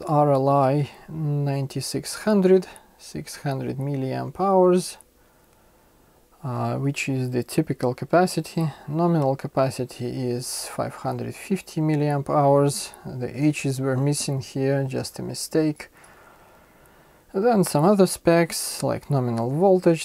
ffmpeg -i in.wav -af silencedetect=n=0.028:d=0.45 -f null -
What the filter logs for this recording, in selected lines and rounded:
silence_start: 5.01
silence_end: 6.45 | silence_duration: 1.44
silence_start: 15.84
silence_end: 17.35 | silence_duration: 1.50